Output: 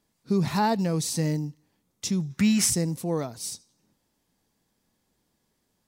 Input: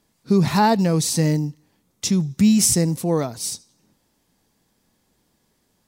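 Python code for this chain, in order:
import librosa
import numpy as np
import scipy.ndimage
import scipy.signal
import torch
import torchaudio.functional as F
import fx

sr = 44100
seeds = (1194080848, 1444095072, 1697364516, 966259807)

y = fx.peak_eq(x, sr, hz=1600.0, db=14.5, octaves=1.7, at=(2.3, 2.7))
y = F.gain(torch.from_numpy(y), -7.0).numpy()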